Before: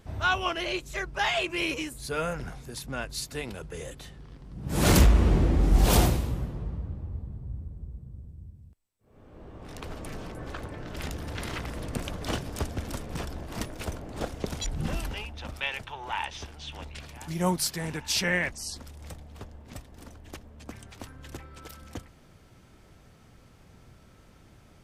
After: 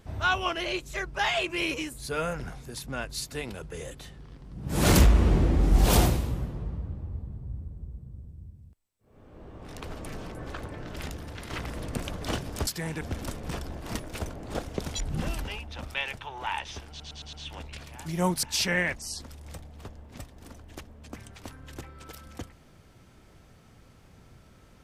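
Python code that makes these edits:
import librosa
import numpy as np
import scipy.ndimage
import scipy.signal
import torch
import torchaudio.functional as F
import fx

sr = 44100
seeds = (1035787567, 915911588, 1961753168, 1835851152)

y = fx.edit(x, sr, fx.fade_out_to(start_s=10.86, length_s=0.64, floor_db=-7.0),
    fx.stutter(start_s=16.55, slice_s=0.11, count=5),
    fx.move(start_s=17.65, length_s=0.34, to_s=12.67), tone=tone)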